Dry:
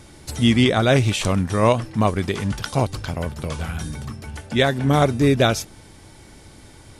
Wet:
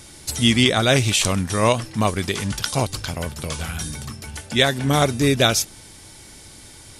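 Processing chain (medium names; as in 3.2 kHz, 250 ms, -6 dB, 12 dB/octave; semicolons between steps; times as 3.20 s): treble shelf 2.6 kHz +12 dB; trim -2 dB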